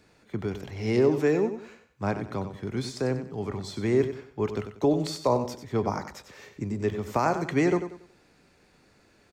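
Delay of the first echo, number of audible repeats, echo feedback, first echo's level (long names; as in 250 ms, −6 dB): 94 ms, 3, 32%, −10.0 dB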